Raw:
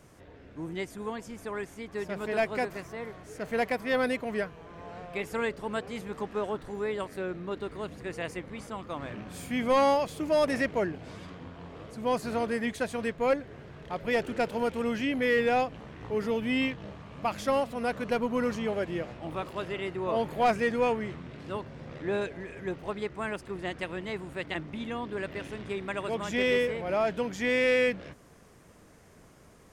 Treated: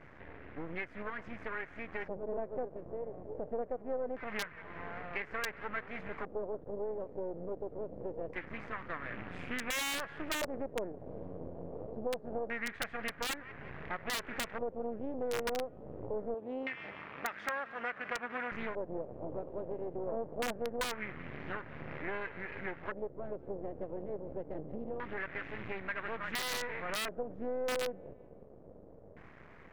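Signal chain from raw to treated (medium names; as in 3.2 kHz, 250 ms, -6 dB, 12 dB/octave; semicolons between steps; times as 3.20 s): half-wave rectifier; 16.34–18.52 s: high-pass 420 Hz 6 dB/octave; feedback echo behind a high-pass 182 ms, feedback 36%, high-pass 1.9 kHz, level -14 dB; LFO low-pass square 0.24 Hz 530–2000 Hz; dynamic bell 1.5 kHz, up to +6 dB, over -45 dBFS, Q 1.5; integer overflow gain 16.5 dB; compression 3:1, threshold -41 dBFS, peak gain reduction 15 dB; loudspeaker Doppler distortion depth 0.31 ms; trim +3.5 dB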